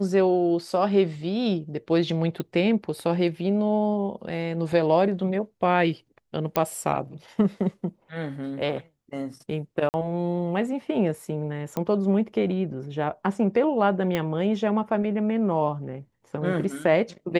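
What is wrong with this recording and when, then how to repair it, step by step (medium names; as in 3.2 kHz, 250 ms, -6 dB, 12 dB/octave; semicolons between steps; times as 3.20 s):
2.40 s: pop -18 dBFS
6.56 s: pop -8 dBFS
9.89–9.94 s: dropout 49 ms
11.77 s: pop -15 dBFS
14.15 s: pop -12 dBFS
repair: de-click; interpolate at 9.89 s, 49 ms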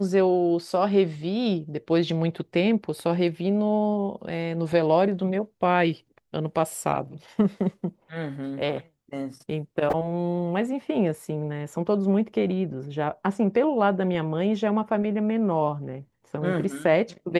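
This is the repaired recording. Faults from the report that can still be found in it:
14.15 s: pop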